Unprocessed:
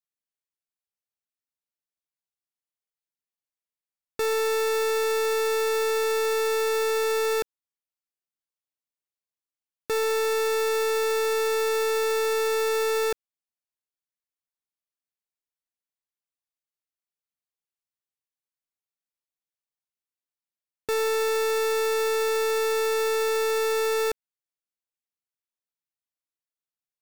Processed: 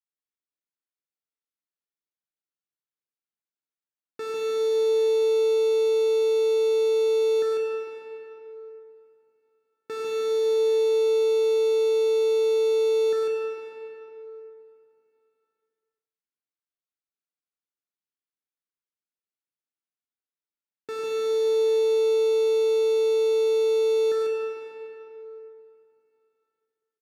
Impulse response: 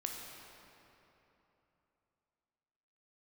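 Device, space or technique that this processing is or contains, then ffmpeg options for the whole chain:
station announcement: -filter_complex "[0:a]highpass=310,lowpass=3.6k,firequalizer=gain_entry='entry(130,0);entry(640,-16);entry(15000,5)':delay=0.05:min_phase=1,equalizer=f=1.4k:t=o:w=0.39:g=6,aecho=1:1:102|148.7:0.355|0.708[a];[1:a]atrim=start_sample=2205[b];[a][b]afir=irnorm=-1:irlink=0,volume=6dB"

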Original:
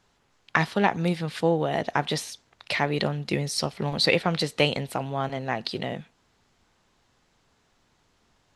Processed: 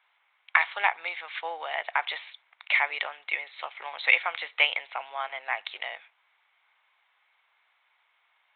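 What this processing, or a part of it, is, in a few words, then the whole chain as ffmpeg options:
musical greeting card: -af "aresample=8000,aresample=44100,highpass=f=820:w=0.5412,highpass=f=820:w=1.3066,equalizer=f=2.2k:t=o:w=0.21:g=11"

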